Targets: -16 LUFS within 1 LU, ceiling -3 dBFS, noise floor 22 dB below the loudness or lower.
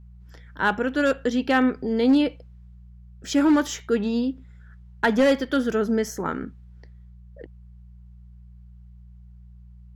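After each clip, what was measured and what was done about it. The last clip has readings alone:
clipped samples 0.4%; clipping level -12.5 dBFS; hum 60 Hz; highest harmonic 180 Hz; hum level -44 dBFS; loudness -23.0 LUFS; peak level -12.5 dBFS; loudness target -16.0 LUFS
-> clip repair -12.5 dBFS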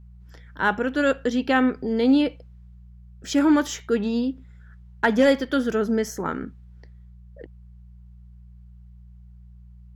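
clipped samples 0.0%; hum 60 Hz; highest harmonic 180 Hz; hum level -44 dBFS
-> de-hum 60 Hz, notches 3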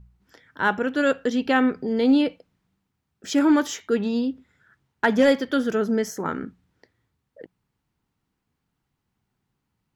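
hum not found; loudness -22.5 LUFS; peak level -6.0 dBFS; loudness target -16.0 LUFS
-> trim +6.5 dB; peak limiter -3 dBFS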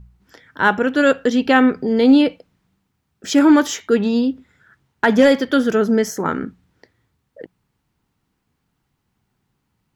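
loudness -16.5 LUFS; peak level -3.0 dBFS; noise floor -72 dBFS

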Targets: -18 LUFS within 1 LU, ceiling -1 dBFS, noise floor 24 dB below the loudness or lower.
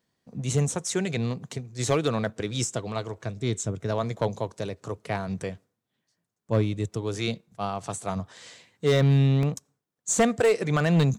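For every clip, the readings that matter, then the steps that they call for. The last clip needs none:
clipped samples 0.4%; clipping level -14.5 dBFS; dropouts 1; longest dropout 1.5 ms; loudness -27.0 LUFS; peak level -14.5 dBFS; loudness target -18.0 LUFS
-> clip repair -14.5 dBFS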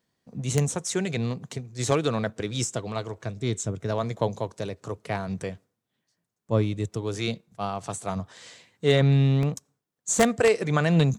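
clipped samples 0.0%; dropouts 1; longest dropout 1.5 ms
-> interpolate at 9.43 s, 1.5 ms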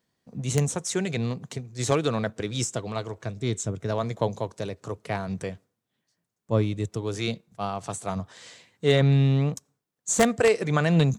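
dropouts 0; loudness -26.5 LUFS; peak level -5.5 dBFS; loudness target -18.0 LUFS
-> trim +8.5 dB; peak limiter -1 dBFS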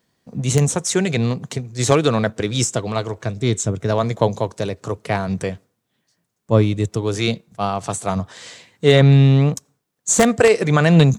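loudness -18.5 LUFS; peak level -1.0 dBFS; noise floor -74 dBFS

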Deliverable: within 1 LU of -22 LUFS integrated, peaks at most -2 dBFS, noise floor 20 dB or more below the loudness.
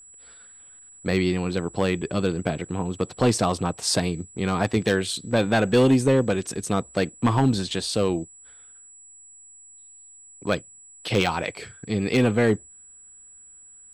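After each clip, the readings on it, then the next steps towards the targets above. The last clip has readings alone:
clipped samples 0.4%; clipping level -11.5 dBFS; steady tone 7.8 kHz; tone level -46 dBFS; loudness -24.0 LUFS; peak level -11.5 dBFS; loudness target -22.0 LUFS
-> clip repair -11.5 dBFS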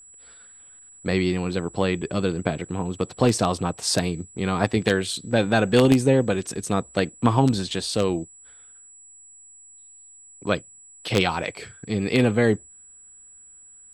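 clipped samples 0.0%; steady tone 7.8 kHz; tone level -46 dBFS
-> band-stop 7.8 kHz, Q 30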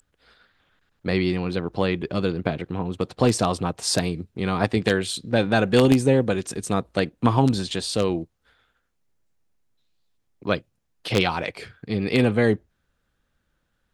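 steady tone not found; loudness -23.5 LUFS; peak level -2.5 dBFS; loudness target -22.0 LUFS
-> trim +1.5 dB; peak limiter -2 dBFS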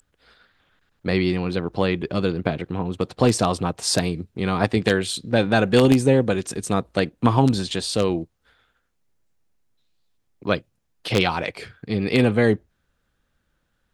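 loudness -22.0 LUFS; peak level -2.0 dBFS; noise floor -72 dBFS

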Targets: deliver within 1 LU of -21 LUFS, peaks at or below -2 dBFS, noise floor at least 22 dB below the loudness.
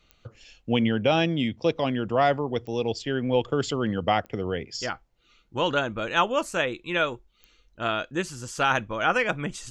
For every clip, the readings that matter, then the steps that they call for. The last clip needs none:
clicks found 4; loudness -26.0 LUFS; peak level -9.0 dBFS; loudness target -21.0 LUFS
-> de-click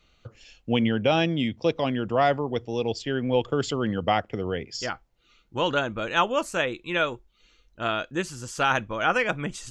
clicks found 0; loudness -26.0 LUFS; peak level -9.0 dBFS; loudness target -21.0 LUFS
-> trim +5 dB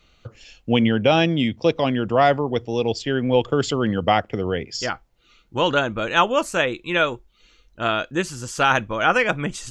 loudness -21.0 LUFS; peak level -4.0 dBFS; noise floor -59 dBFS

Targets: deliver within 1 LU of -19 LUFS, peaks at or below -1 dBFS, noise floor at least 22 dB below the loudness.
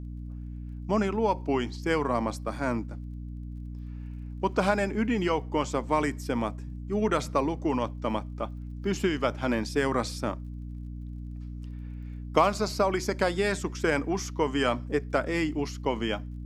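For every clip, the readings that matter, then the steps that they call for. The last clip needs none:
tick rate 24 per s; hum 60 Hz; highest harmonic 300 Hz; hum level -35 dBFS; loudness -28.5 LUFS; peak level -6.0 dBFS; loudness target -19.0 LUFS
-> de-click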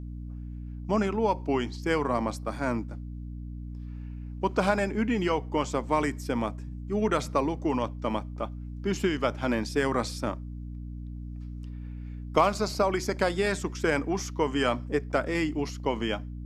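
tick rate 0 per s; hum 60 Hz; highest harmonic 300 Hz; hum level -35 dBFS
-> hum notches 60/120/180/240/300 Hz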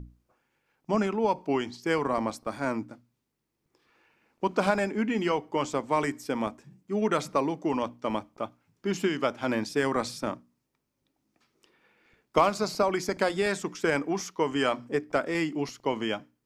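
hum not found; loudness -29.0 LUFS; peak level -7.5 dBFS; loudness target -19.0 LUFS
-> trim +10 dB; peak limiter -1 dBFS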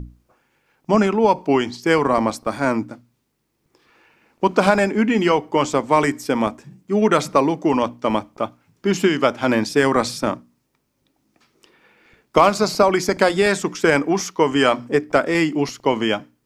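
loudness -19.0 LUFS; peak level -1.0 dBFS; noise floor -70 dBFS

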